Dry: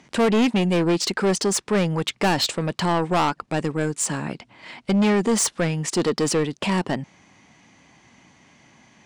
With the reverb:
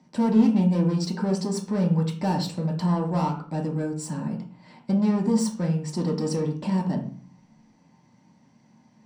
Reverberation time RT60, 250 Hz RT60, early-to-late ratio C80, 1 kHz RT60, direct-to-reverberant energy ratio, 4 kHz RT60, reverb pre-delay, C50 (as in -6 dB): 0.40 s, 0.70 s, 12.5 dB, 0.45 s, -2.0 dB, 0.40 s, 3 ms, 8.5 dB